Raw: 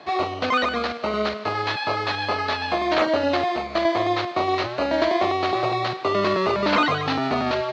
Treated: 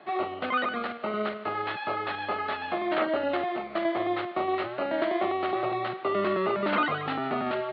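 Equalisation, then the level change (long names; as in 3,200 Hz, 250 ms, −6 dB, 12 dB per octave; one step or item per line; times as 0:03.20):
high-frequency loss of the air 67 metres
loudspeaker in its box 220–2,800 Hz, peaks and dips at 280 Hz −7 dB, 480 Hz −8 dB, 680 Hz −5 dB, 1,000 Hz −10 dB, 1,700 Hz −5 dB, 2,400 Hz −7 dB
0.0 dB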